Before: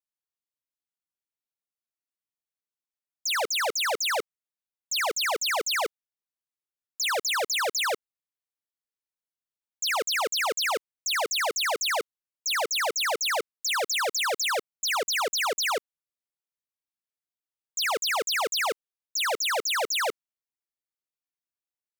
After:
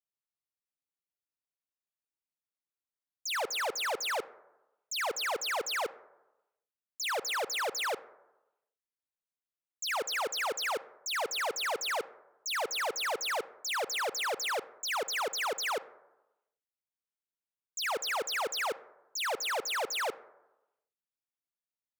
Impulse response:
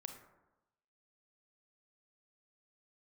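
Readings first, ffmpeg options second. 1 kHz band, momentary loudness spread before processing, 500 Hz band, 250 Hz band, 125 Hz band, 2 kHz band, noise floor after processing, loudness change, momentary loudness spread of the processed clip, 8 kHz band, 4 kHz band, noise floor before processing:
-5.0 dB, 6 LU, -5.0 dB, -5.0 dB, n/a, -6.0 dB, under -85 dBFS, -6.5 dB, 6 LU, -8.0 dB, -7.5 dB, under -85 dBFS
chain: -filter_complex "[0:a]asplit=2[a][b];[1:a]atrim=start_sample=2205,lowpass=3.4k[c];[b][c]afir=irnorm=-1:irlink=0,volume=-4.5dB[d];[a][d]amix=inputs=2:normalize=0,volume=-7.5dB"

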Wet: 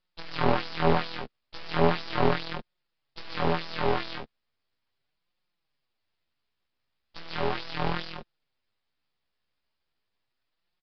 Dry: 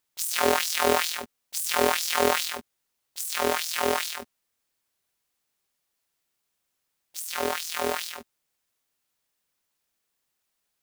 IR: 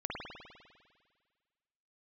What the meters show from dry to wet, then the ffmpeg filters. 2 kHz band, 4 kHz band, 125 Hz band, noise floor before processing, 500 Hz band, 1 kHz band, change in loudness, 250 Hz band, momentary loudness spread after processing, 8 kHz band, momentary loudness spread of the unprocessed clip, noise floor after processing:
-5.0 dB, -7.0 dB, +16.0 dB, -79 dBFS, -2.0 dB, -2.0 dB, -3.0 dB, +3.5 dB, 16 LU, under -30 dB, 14 LU, -81 dBFS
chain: -filter_complex "[0:a]lowshelf=f=130:g=11,acrossover=split=540|1200[a][b][c];[c]alimiter=limit=-18.5dB:level=0:latency=1:release=135[d];[a][b][d]amix=inputs=3:normalize=0,aeval=exprs='max(val(0),0)':c=same,flanger=delay=5.5:depth=9.5:regen=6:speed=0.37:shape=sinusoidal,aresample=11025,aresample=44100,volume=6dB"

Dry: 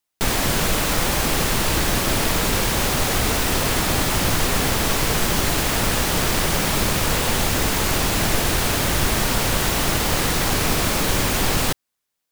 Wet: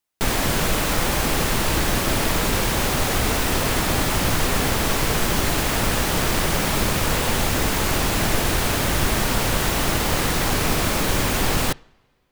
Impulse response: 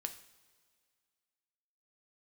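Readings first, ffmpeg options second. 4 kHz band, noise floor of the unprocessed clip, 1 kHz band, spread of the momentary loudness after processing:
-2.0 dB, -79 dBFS, -0.5 dB, 0 LU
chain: -filter_complex "[0:a]asplit=2[a][b];[1:a]atrim=start_sample=2205,lowpass=3.6k[c];[b][c]afir=irnorm=-1:irlink=0,volume=-10dB[d];[a][d]amix=inputs=2:normalize=0,volume=-2dB"

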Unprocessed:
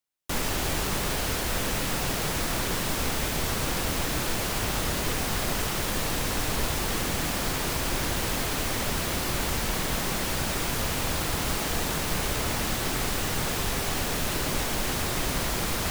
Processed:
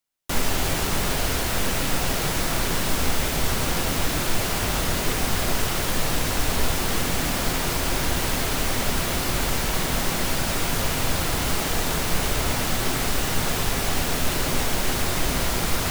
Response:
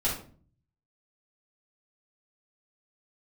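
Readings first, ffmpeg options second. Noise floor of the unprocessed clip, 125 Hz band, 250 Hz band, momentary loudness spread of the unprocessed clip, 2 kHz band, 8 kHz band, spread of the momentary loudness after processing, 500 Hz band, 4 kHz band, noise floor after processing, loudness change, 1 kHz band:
-29 dBFS, +4.0 dB, +3.5 dB, 0 LU, +3.5 dB, +3.5 dB, 0 LU, +3.5 dB, +3.5 dB, -26 dBFS, +3.5 dB, +3.5 dB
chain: -filter_complex "[0:a]asplit=2[a][b];[1:a]atrim=start_sample=2205[c];[b][c]afir=irnorm=-1:irlink=0,volume=-19.5dB[d];[a][d]amix=inputs=2:normalize=0,volume=2.5dB"

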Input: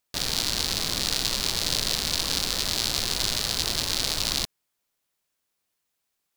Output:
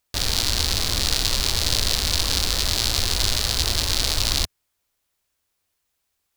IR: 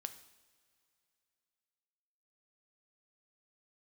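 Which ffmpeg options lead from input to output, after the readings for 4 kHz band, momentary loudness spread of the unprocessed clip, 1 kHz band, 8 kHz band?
+3.5 dB, 1 LU, +3.5 dB, +3.5 dB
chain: -af "lowshelf=f=110:t=q:w=1.5:g=7.5,volume=3.5dB"

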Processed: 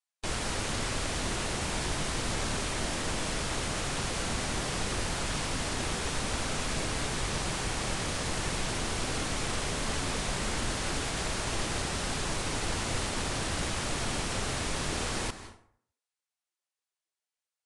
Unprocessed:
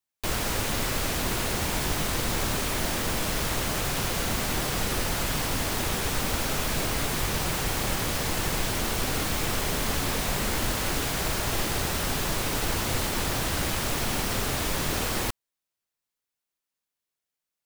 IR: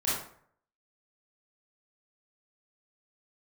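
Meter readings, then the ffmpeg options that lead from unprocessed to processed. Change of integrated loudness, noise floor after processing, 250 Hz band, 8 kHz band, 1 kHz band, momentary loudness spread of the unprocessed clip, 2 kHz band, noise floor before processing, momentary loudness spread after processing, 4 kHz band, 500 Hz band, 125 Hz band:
-5.0 dB, under -85 dBFS, -4.0 dB, -4.0 dB, -4.0 dB, 0 LU, -4.0 dB, under -85 dBFS, 0 LU, -3.5 dB, -4.0 dB, -4.0 dB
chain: -filter_complex "[0:a]asplit=2[a][b];[1:a]atrim=start_sample=2205,adelay=129[c];[b][c]afir=irnorm=-1:irlink=0,volume=-20.5dB[d];[a][d]amix=inputs=2:normalize=0,volume=-4.5dB" -ar 22050 -c:a libvorbis -b:a 48k

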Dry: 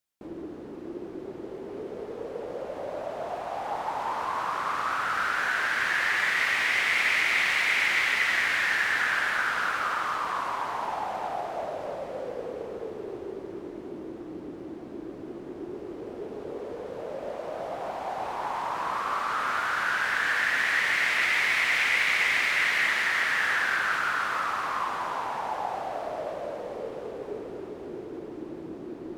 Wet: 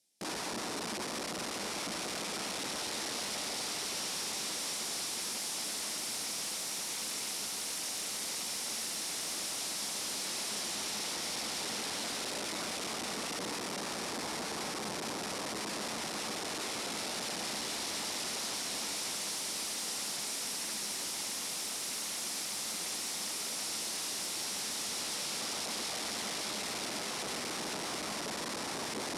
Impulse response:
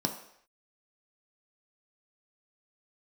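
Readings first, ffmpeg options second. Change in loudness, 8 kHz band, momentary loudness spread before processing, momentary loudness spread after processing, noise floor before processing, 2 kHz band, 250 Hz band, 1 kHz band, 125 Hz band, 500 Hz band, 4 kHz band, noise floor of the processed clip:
-8.5 dB, +10.0 dB, 17 LU, 2 LU, -41 dBFS, -17.5 dB, -3.5 dB, -12.5 dB, -2.5 dB, -8.5 dB, 0.0 dB, -39 dBFS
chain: -filter_complex "[0:a]equalizer=f=1.2k:w=1.8:g=-14.5,acompressor=threshold=-34dB:ratio=6,alimiter=level_in=7dB:limit=-24dB:level=0:latency=1:release=59,volume=-7dB,aeval=exprs='(mod(119*val(0)+1,2)-1)/119':c=same,aexciter=amount=1.7:drive=6.8:freq=4.1k,asoftclip=type=tanh:threshold=-35dB,highpass=100,equalizer=f=100:t=q:w=4:g=-7,equalizer=f=210:t=q:w=4:g=3,equalizer=f=1.6k:t=q:w=4:g=-5,lowpass=f=9.9k:w=0.5412,lowpass=f=9.9k:w=1.3066,asplit=2[a][b];[1:a]atrim=start_sample=2205[c];[b][c]afir=irnorm=-1:irlink=0,volume=-22.5dB[d];[a][d]amix=inputs=2:normalize=0,volume=8dB"

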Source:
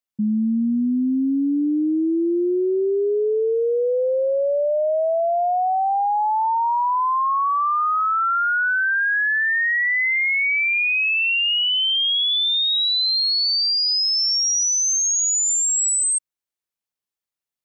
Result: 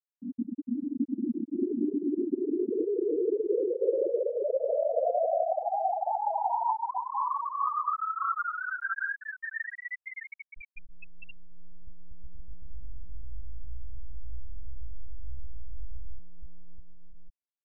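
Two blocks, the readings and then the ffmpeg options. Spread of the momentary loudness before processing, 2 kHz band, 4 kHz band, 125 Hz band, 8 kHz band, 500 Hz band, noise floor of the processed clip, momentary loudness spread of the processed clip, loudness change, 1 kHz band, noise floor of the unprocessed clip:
4 LU, -18.0 dB, under -40 dB, n/a, under -40 dB, -8.0 dB, under -85 dBFS, 20 LU, -12.0 dB, -10.0 dB, under -85 dBFS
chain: -filter_complex "[0:a]highshelf=f=3k:g=-7.5,afftfilt=real='hypot(re,im)*cos(2*PI*random(0))':imag='hypot(re,im)*sin(2*PI*random(1))':win_size=512:overlap=0.75,equalizer=f=160:t=o:w=0.49:g=-12,acrossover=split=130|3000[a][b][c];[c]aeval=exprs='abs(val(0))':c=same[d];[a][b][d]amix=inputs=3:normalize=0,asplit=2[e][f];[f]adelay=17,volume=-8.5dB[g];[e][g]amix=inputs=2:normalize=0,aecho=1:1:610|1098|1488|1801|2051:0.631|0.398|0.251|0.158|0.1,afftfilt=real='re*gte(hypot(re,im),0.398)':imag='im*gte(hypot(re,im),0.398)':win_size=1024:overlap=0.75,volume=-2dB"

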